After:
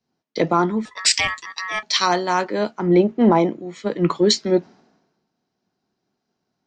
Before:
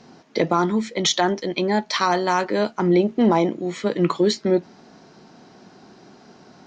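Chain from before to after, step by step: 0.85–1.83 ring modulator 1500 Hz; three-band expander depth 100%

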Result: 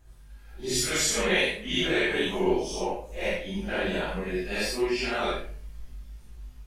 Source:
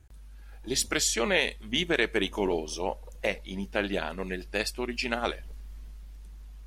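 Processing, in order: phase scrambler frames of 0.2 s; on a send: reverb RT60 0.50 s, pre-delay 5 ms, DRR 2.5 dB

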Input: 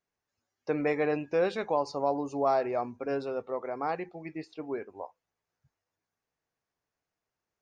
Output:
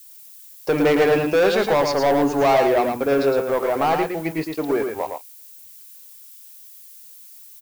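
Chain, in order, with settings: low shelf 78 Hz -6.5 dB; notches 60/120/180/240/300 Hz; sample leveller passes 3; added noise violet -49 dBFS; echo 0.111 s -5.5 dB; gain +4 dB

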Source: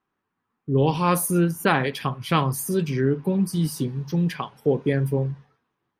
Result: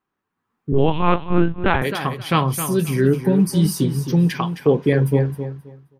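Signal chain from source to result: AGC gain up to 7.5 dB; feedback echo 0.264 s, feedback 20%, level -10 dB; 0.72–1.82 LPC vocoder at 8 kHz pitch kept; gain -1 dB

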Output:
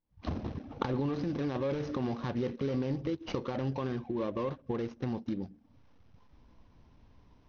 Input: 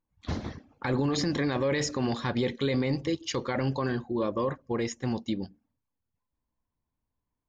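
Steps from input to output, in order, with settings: median filter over 25 samples; recorder AGC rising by 77 dB/s; steep low-pass 6100 Hz 96 dB/oct; notch 4500 Hz, Q 26; gain -4.5 dB

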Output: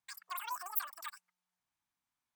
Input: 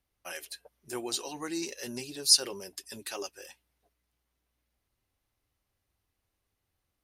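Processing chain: resonant low shelf 210 Hz -11.5 dB, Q 1.5; notch 5000 Hz, Q 14; wide varispeed 2.99×; gain -6 dB

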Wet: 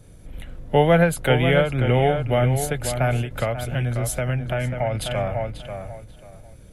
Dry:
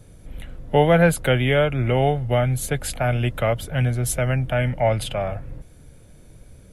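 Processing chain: darkening echo 0.539 s, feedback 24%, low-pass 3600 Hz, level -8 dB; 3.43–4.95 compressor, threshold -20 dBFS, peak gain reduction 7 dB; ending taper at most 140 dB/s

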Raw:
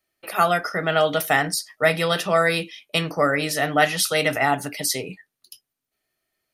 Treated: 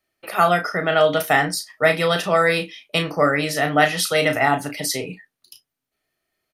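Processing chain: high shelf 4800 Hz -5 dB; doubler 34 ms -8.5 dB; gain +2 dB

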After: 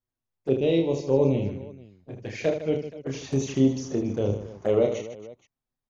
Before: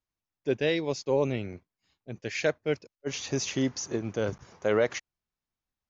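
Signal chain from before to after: tilt shelf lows +5 dB; envelope flanger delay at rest 8.1 ms, full sweep at -23 dBFS; reverse bouncing-ball echo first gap 30 ms, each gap 1.6×, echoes 5

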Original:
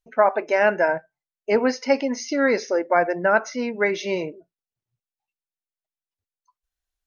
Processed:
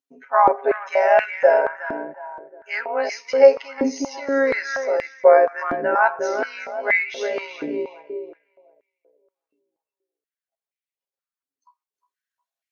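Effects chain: granular stretch 1.8×, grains 33 ms; tape echo 0.363 s, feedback 36%, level -4 dB, low-pass 1400 Hz; stepped high-pass 4.2 Hz 280–2200 Hz; gain -3 dB

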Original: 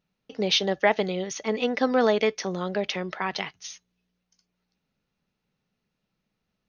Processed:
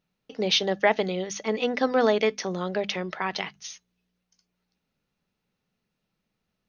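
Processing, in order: notches 50/100/150/200/250 Hz

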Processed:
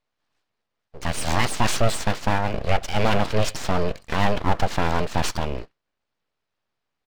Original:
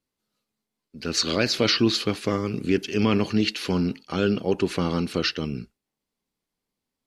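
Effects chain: downsampling 11025 Hz; overdrive pedal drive 16 dB, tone 1100 Hz, clips at -7 dBFS; full-wave rectifier; gain +3 dB

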